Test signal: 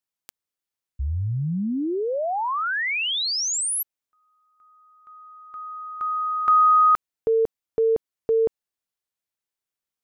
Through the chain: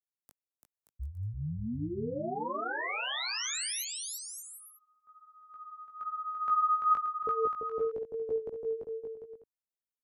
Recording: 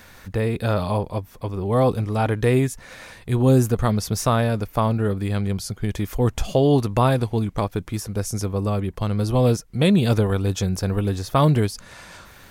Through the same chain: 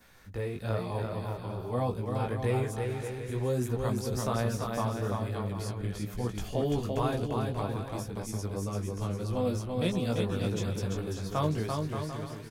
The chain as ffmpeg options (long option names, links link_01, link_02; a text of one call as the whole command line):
ffmpeg -i in.wav -filter_complex "[0:a]flanger=delay=16.5:depth=3.9:speed=1.1,acrossover=split=210|1200|6400[link_01][link_02][link_03][link_04];[link_01]alimiter=limit=-21.5dB:level=0:latency=1[link_05];[link_03]agate=range=-33dB:threshold=-57dB:ratio=3:release=233:detection=peak[link_06];[link_05][link_02][link_06][link_04]amix=inputs=4:normalize=0,aecho=1:1:340|578|744.6|861.2|942.9:0.631|0.398|0.251|0.158|0.1,volume=-9dB" out.wav